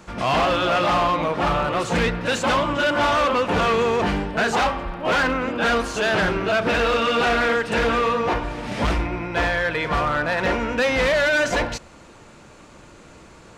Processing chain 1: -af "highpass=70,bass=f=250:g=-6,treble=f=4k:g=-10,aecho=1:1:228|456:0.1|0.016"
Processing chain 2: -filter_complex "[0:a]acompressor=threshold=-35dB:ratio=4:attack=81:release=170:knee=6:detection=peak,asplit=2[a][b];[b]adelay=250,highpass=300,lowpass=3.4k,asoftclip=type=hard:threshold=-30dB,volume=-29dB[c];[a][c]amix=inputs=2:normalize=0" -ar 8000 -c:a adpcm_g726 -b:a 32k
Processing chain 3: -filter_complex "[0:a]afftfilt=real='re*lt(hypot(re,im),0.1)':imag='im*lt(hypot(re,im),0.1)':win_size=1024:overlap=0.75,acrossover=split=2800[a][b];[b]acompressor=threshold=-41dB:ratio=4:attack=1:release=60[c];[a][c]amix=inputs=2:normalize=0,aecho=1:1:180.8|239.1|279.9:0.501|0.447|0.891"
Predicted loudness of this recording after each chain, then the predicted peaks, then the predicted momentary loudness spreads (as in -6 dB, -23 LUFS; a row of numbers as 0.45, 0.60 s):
-21.5, -32.0, -30.5 LUFS; -11.5, -20.0, -17.5 dBFS; 6, 15, 5 LU